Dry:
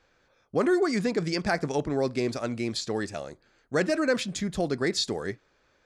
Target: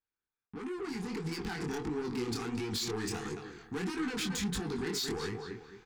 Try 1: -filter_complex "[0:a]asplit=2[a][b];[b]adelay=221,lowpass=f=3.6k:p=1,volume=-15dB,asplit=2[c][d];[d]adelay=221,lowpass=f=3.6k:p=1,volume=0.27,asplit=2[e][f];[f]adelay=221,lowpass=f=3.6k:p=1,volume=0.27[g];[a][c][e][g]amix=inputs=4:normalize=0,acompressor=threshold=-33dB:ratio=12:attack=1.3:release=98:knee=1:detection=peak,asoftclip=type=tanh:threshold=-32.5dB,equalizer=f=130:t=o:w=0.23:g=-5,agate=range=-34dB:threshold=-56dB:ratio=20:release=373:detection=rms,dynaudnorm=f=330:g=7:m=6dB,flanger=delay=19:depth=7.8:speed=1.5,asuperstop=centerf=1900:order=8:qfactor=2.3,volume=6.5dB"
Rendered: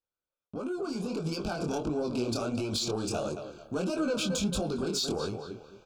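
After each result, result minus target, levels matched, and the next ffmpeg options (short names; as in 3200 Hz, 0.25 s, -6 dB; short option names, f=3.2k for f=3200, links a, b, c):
soft clip: distortion -9 dB; 2000 Hz band -5.5 dB
-filter_complex "[0:a]asplit=2[a][b];[b]adelay=221,lowpass=f=3.6k:p=1,volume=-15dB,asplit=2[c][d];[d]adelay=221,lowpass=f=3.6k:p=1,volume=0.27,asplit=2[e][f];[f]adelay=221,lowpass=f=3.6k:p=1,volume=0.27[g];[a][c][e][g]amix=inputs=4:normalize=0,acompressor=threshold=-33dB:ratio=12:attack=1.3:release=98:knee=1:detection=peak,asoftclip=type=tanh:threshold=-40.5dB,equalizer=f=130:t=o:w=0.23:g=-5,agate=range=-34dB:threshold=-56dB:ratio=20:release=373:detection=rms,dynaudnorm=f=330:g=7:m=6dB,flanger=delay=19:depth=7.8:speed=1.5,asuperstop=centerf=1900:order=8:qfactor=2.3,volume=6.5dB"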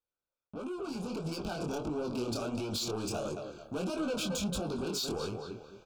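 2000 Hz band -5.5 dB
-filter_complex "[0:a]asplit=2[a][b];[b]adelay=221,lowpass=f=3.6k:p=1,volume=-15dB,asplit=2[c][d];[d]adelay=221,lowpass=f=3.6k:p=1,volume=0.27,asplit=2[e][f];[f]adelay=221,lowpass=f=3.6k:p=1,volume=0.27[g];[a][c][e][g]amix=inputs=4:normalize=0,acompressor=threshold=-33dB:ratio=12:attack=1.3:release=98:knee=1:detection=peak,asoftclip=type=tanh:threshold=-40.5dB,equalizer=f=130:t=o:w=0.23:g=-5,agate=range=-34dB:threshold=-56dB:ratio=20:release=373:detection=rms,dynaudnorm=f=330:g=7:m=6dB,flanger=delay=19:depth=7.8:speed=1.5,asuperstop=centerf=590:order=8:qfactor=2.3,volume=6.5dB"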